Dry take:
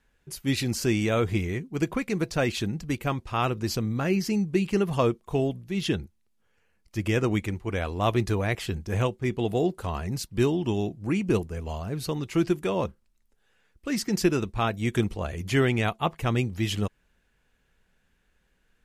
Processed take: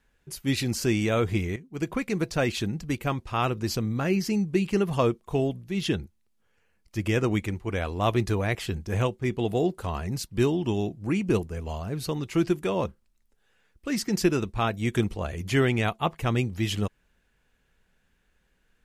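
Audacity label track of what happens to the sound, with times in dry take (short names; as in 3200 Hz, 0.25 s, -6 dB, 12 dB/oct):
1.560000	2.000000	fade in, from -14 dB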